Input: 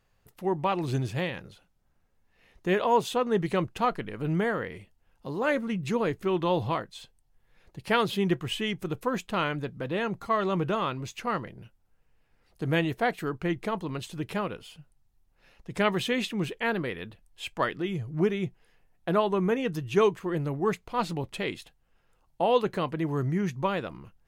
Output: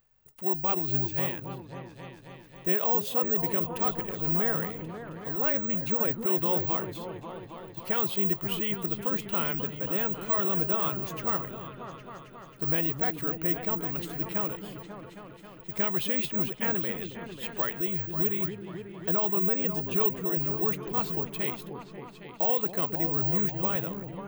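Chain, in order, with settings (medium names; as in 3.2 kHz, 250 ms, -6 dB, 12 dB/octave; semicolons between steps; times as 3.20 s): peak limiter -18 dBFS, peak gain reduction 8.5 dB; careless resampling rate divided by 2×, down none, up zero stuff; treble shelf 10 kHz +3.5 dB; on a send: delay with an opening low-pass 270 ms, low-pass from 400 Hz, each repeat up 2 oct, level -6 dB; on the sum: trim -4.5 dB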